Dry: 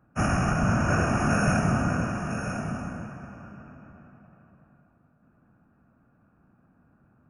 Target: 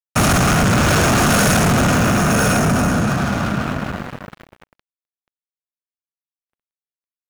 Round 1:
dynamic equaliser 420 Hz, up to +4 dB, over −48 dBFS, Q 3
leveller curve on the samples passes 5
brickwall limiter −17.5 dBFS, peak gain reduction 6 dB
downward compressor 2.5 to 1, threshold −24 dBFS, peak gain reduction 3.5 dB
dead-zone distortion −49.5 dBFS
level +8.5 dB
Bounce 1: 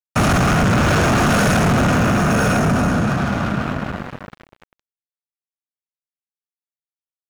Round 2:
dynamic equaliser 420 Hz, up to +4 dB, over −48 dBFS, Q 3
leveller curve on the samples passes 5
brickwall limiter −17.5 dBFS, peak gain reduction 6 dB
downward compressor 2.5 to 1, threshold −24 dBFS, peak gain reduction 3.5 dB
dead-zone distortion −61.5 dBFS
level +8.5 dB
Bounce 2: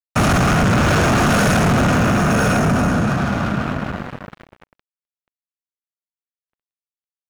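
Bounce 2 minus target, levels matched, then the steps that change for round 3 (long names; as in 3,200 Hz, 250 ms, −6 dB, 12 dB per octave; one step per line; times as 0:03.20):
8,000 Hz band −6.0 dB
add after downward compressor: high-shelf EQ 5,600 Hz +10.5 dB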